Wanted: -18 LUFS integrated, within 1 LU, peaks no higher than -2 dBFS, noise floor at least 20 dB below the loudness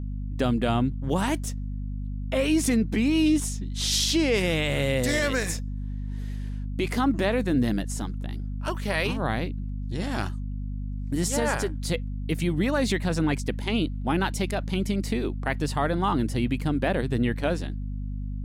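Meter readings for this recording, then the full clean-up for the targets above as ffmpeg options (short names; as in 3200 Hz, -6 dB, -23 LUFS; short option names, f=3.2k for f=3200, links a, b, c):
hum 50 Hz; harmonics up to 250 Hz; hum level -29 dBFS; loudness -27.0 LUFS; peak -12.5 dBFS; loudness target -18.0 LUFS
-> -af "bandreject=f=50:t=h:w=4,bandreject=f=100:t=h:w=4,bandreject=f=150:t=h:w=4,bandreject=f=200:t=h:w=4,bandreject=f=250:t=h:w=4"
-af "volume=9dB"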